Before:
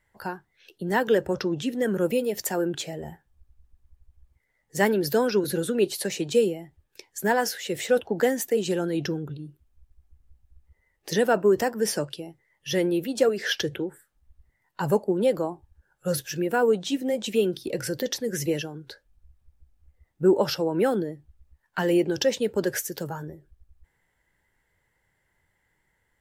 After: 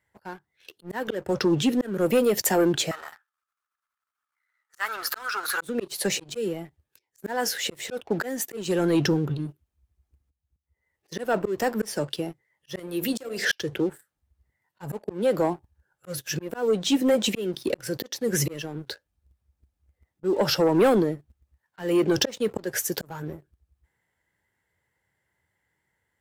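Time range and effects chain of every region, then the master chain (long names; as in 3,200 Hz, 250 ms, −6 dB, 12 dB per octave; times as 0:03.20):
0:02.91–0:05.61: gain on one half-wave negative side −7 dB + high-pass with resonance 1,300 Hz, resonance Q 8.3
0:12.79–0:13.45: downward compressor 3 to 1, threshold −28 dBFS + high-shelf EQ 3,100 Hz +9.5 dB + hum removal 50.08 Hz, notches 17
whole clip: volume swells 400 ms; high-pass filter 61 Hz 24 dB per octave; leveller curve on the samples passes 2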